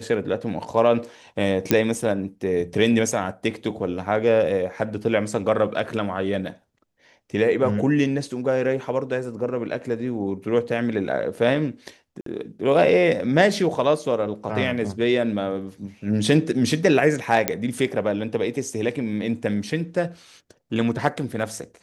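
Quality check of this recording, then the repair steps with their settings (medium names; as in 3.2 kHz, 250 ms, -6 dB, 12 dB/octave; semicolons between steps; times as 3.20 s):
1.71 s: pop -3 dBFS
12.21–12.26 s: dropout 53 ms
17.48 s: pop -3 dBFS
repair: de-click; interpolate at 12.21 s, 53 ms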